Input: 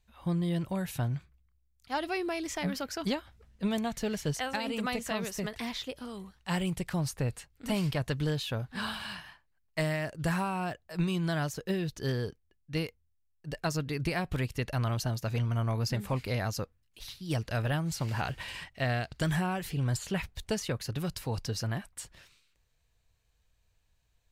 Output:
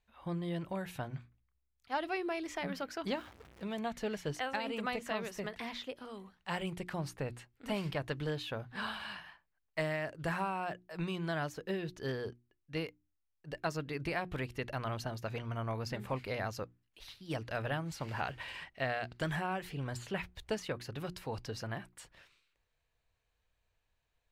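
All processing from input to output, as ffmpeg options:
-filter_complex "[0:a]asettb=1/sr,asplit=3[a][b][c];[a]atrim=end=3.154[d];[b]atrim=start=3.15:end=3.79,asetpts=PTS-STARTPTS,afade=t=in:d=0.004:c=qsin,afade=t=out:st=0.636:d=0.004:c=qsin,aeval=exprs='val(0)+0.5*0.00631*sgn(val(0))':c=same,highpass=51,acompressor=threshold=-31dB:ratio=2.5:attack=3.2:release=140:knee=1:detection=peak[e];[c]atrim=start=3.786[f];[d][e]acrossfade=d=0.004:c1=hsin:c2=qsin[g];[g][f]acrossfade=d=0.004:c1=qsin:c2=hsin,bass=f=250:g=-7,treble=f=4k:g=-10,bandreject=f=60:t=h:w=6,bandreject=f=120:t=h:w=6,bandreject=f=180:t=h:w=6,bandreject=f=240:t=h:w=6,bandreject=f=300:t=h:w=6,bandreject=f=360:t=h:w=6,volume=-2dB"

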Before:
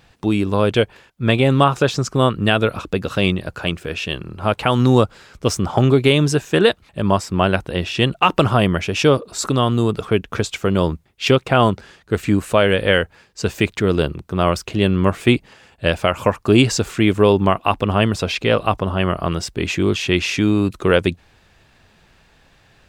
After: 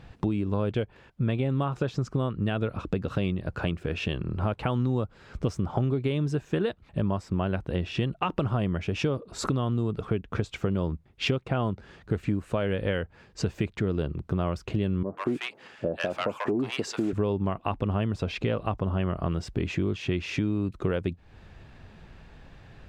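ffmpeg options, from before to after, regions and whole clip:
-filter_complex "[0:a]asettb=1/sr,asplit=3[a][b][c];[a]atrim=end=15.034[d];[b]atrim=start=15.03:end=17.13,asetpts=PTS-STARTPTS,afade=t=in:d=0.004:c=qsin,afade=t=out:st=2.096:d=0.004:c=qsin,asoftclip=type=hard:threshold=-9dB,highpass=280,acrossover=split=820[e][f];[f]adelay=140[g];[e][g]amix=inputs=2:normalize=0,atrim=end_sample=92610[h];[c]atrim=start=17.126[i];[d][h]acrossfade=d=0.004:c1=hsin:c2=qsin[j];[j][i]acrossfade=d=0.004:c1=qsin:c2=hsin,lowpass=f=2.5k:p=1,lowshelf=f=320:g=8,acompressor=threshold=-26dB:ratio=5"

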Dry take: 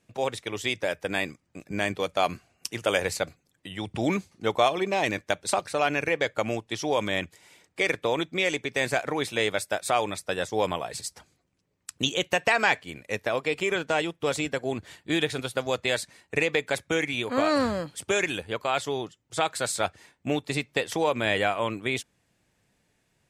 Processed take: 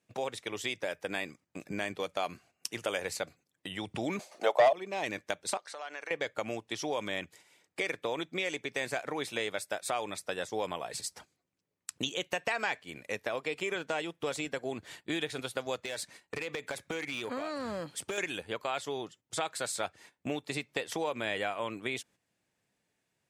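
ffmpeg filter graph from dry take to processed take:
-filter_complex "[0:a]asettb=1/sr,asplit=3[a][b][c];[a]atrim=end=4.194[d];[b]atrim=start=4.19:end=4.73,asetpts=PTS-STARTPTS,afade=t=in:d=0.004:c=qsin,afade=t=out:st=0.536:d=0.004:c=qsin,highpass=f=620:t=q:w=5.8,aeval=exprs='1*sin(PI/2*1.78*val(0)/1)':c=same[e];[c]atrim=start=4.726[f];[d][e]acrossfade=d=0.004:c1=hsin:c2=qsin[g];[g][f]acrossfade=d=0.004:c1=qsin:c2=hsin,asettb=1/sr,asplit=3[h][i][j];[h]atrim=end=5.574[k];[i]atrim=start=5.57:end=6.11,asetpts=PTS-STARTPTS,afade=t=in:d=0.004:c=qsin,afade=t=out:st=0.536:d=0.004:c=qsin,equalizer=f=2.5k:w=7.9:g=-11.5,acompressor=threshold=-34dB:ratio=6:attack=3.2:release=140:knee=1:detection=peak,highpass=650,lowpass=7.6k[l];[j]atrim=start=6.106[m];[k][l]acrossfade=d=0.004:c1=hsin:c2=qsin[n];[n][m]acrossfade=d=0.004:c1=qsin:c2=hsin,asettb=1/sr,asplit=3[o][p][q];[o]atrim=end=15.844[r];[p]atrim=start=15.84:end=18.18,asetpts=PTS-STARTPTS,afade=t=in:d=0.004:c=qsin,afade=t=out:st=2.336:d=0.004:c=qsin,acompressor=threshold=-27dB:ratio=6:attack=3.2:release=140:knee=1:detection=peak,aeval=exprs='clip(val(0),-1,0.0447)':c=same[s];[q]atrim=start=18.176[t];[r][s]acrossfade=d=0.004:c1=hsin:c2=qsin[u];[u][t]acrossfade=d=0.004:c1=qsin:c2=hsin,agate=range=-11dB:threshold=-50dB:ratio=16:detection=peak,highpass=f=180:p=1,acompressor=threshold=-41dB:ratio=2,volume=2.5dB"

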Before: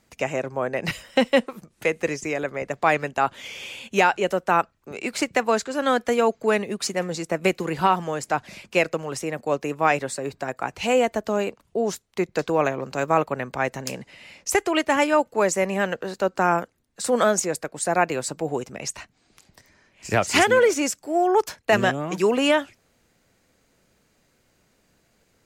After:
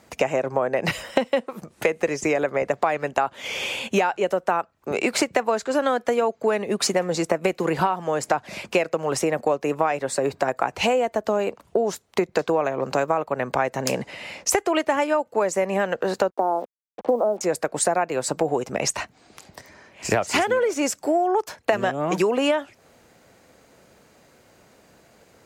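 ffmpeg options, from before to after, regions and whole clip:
-filter_complex "[0:a]asettb=1/sr,asplit=3[a][b][c];[a]atrim=end=16.304[d];[b]atrim=start=16.3:end=17.41,asetpts=PTS-STARTPTS,afade=t=in:d=0.004:c=qsin,afade=t=out:st=1.106:d=0.004:c=qsin,asuperpass=centerf=450:order=8:qfactor=0.63,acrusher=bits=7:mix=0:aa=0.5[e];[c]atrim=start=17.406[f];[d][e]acrossfade=d=0.004:c1=hsin:c2=qsin[g];[g][f]acrossfade=d=0.004:c1=qsin:c2=hsin,highpass=54,equalizer=f=690:t=o:w=2.1:g=7,acompressor=threshold=-25dB:ratio=12,volume=7dB"

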